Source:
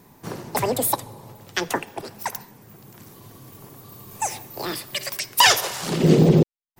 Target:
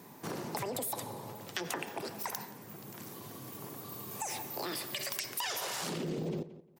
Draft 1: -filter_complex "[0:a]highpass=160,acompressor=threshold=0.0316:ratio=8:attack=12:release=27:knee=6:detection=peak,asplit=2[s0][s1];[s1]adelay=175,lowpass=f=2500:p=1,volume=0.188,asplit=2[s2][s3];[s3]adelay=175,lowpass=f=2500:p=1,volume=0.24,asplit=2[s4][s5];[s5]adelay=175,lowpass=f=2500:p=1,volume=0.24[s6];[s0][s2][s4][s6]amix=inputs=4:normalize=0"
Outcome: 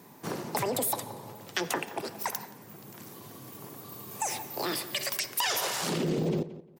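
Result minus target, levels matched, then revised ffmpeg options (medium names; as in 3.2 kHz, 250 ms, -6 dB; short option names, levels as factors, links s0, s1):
compression: peak gain reduction -7.5 dB
-filter_complex "[0:a]highpass=160,acompressor=threshold=0.0119:ratio=8:attack=12:release=27:knee=6:detection=peak,asplit=2[s0][s1];[s1]adelay=175,lowpass=f=2500:p=1,volume=0.188,asplit=2[s2][s3];[s3]adelay=175,lowpass=f=2500:p=1,volume=0.24,asplit=2[s4][s5];[s5]adelay=175,lowpass=f=2500:p=1,volume=0.24[s6];[s0][s2][s4][s6]amix=inputs=4:normalize=0"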